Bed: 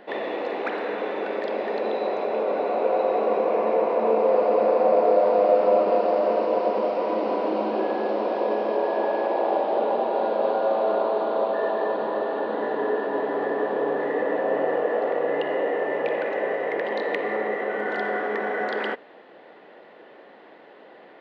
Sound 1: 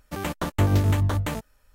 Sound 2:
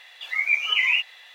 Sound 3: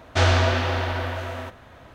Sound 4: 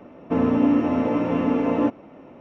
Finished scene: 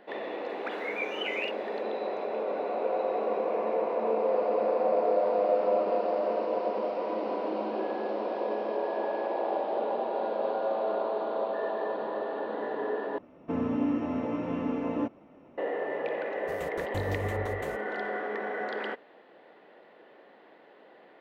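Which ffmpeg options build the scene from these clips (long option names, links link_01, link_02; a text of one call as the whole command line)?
ffmpeg -i bed.wav -i cue0.wav -i cue1.wav -i cue2.wav -i cue3.wav -filter_complex "[0:a]volume=-7dB,asplit=2[link_01][link_02];[link_01]atrim=end=13.184[link_03];[4:a]atrim=end=2.4,asetpts=PTS-STARTPTS,volume=-9.5dB[link_04];[link_02]atrim=start=15.576[link_05];[2:a]atrim=end=1.34,asetpts=PTS-STARTPTS,volume=-14dB,afade=type=in:duration=0.004:curve=hsin,afade=type=out:start_time=1.336:duration=0.004:curve=hsin,adelay=490[link_06];[1:a]atrim=end=1.74,asetpts=PTS-STARTPTS,volume=-14dB,afade=type=in:duration=0.004:curve=hsin,afade=type=out:start_time=1.736:duration=0.004:curve=hsin,adelay=721476S[link_07];[link_03][link_04]acrossfade=duration=0.004:curve1=hsin:curve2=hsin[link_08];[link_08][link_05]acrossfade=duration=0.004:curve1=hsin:curve2=hsin[link_09];[link_09][link_06][link_07]amix=inputs=3:normalize=0" out.wav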